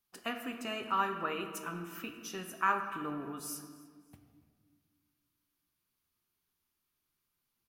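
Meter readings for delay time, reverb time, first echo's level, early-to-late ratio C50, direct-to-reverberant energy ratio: 294 ms, 1.8 s, -22.0 dB, 7.5 dB, 5.0 dB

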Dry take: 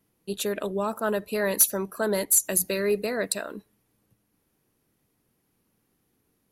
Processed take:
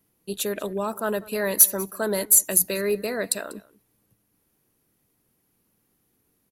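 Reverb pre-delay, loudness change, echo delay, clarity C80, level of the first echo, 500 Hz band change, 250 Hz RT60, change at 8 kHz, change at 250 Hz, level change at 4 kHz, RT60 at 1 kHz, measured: no reverb, +3.5 dB, 193 ms, no reverb, -21.5 dB, 0.0 dB, no reverb, +4.0 dB, 0.0 dB, +1.0 dB, no reverb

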